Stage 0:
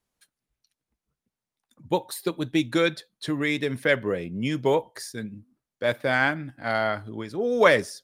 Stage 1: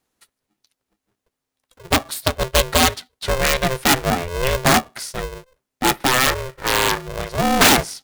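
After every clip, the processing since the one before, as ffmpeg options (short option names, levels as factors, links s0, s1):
-af "aeval=exprs='0.631*(cos(1*acos(clip(val(0)/0.631,-1,1)))-cos(1*PI/2))+0.0224*(cos(6*acos(clip(val(0)/0.631,-1,1)))-cos(6*PI/2))':c=same,aeval=exprs='(mod(4.47*val(0)+1,2)-1)/4.47':c=same,aeval=exprs='val(0)*sgn(sin(2*PI*260*n/s))':c=same,volume=2.24"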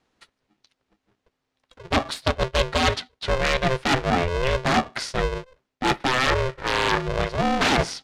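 -af "lowpass=4400,areverse,acompressor=threshold=0.0708:ratio=12,areverse,volume=1.88"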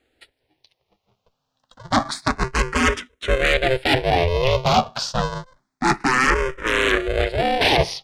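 -filter_complex "[0:a]asplit=2[s0][s1];[s1]afreqshift=0.28[s2];[s0][s2]amix=inputs=2:normalize=1,volume=2"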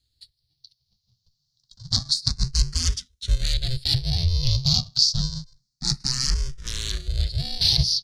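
-af "firequalizer=gain_entry='entry(140,0);entry(260,-24);entry(450,-30);entry(2500,-23);entry(4400,9);entry(7800,-3)':delay=0.05:min_phase=1,volume=1.33"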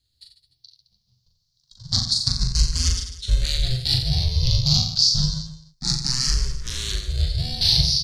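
-af "aecho=1:1:40|88|145.6|214.7|297.7:0.631|0.398|0.251|0.158|0.1"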